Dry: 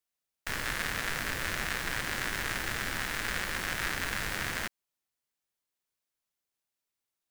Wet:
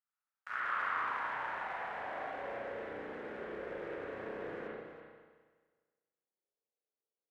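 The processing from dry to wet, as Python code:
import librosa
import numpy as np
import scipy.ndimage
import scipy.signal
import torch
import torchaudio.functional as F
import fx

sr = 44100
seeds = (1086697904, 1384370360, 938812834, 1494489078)

p1 = fx.delta_hold(x, sr, step_db=-29.0, at=(0.59, 1.09))
p2 = fx.filter_sweep_bandpass(p1, sr, from_hz=1300.0, to_hz=450.0, start_s=0.57, end_s=2.98, q=4.3)
p3 = p2 + fx.echo_single(p2, sr, ms=327, db=-11.0, dry=0)
p4 = fx.rev_spring(p3, sr, rt60_s=1.5, pass_ms=(32, 41), chirp_ms=70, drr_db=-9.5)
y = p4 * 10.0 ** (-2.5 / 20.0)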